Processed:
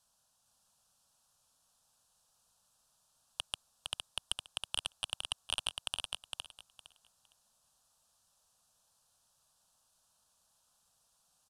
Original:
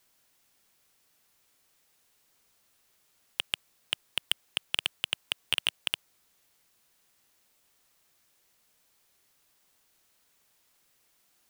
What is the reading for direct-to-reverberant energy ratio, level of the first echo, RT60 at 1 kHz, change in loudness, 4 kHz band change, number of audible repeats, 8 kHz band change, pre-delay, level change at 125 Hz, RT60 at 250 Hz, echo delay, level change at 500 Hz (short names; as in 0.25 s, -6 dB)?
none, -4.0 dB, none, -7.0 dB, -6.5 dB, 3, -1.0 dB, none, n/a, none, 0.46 s, -5.0 dB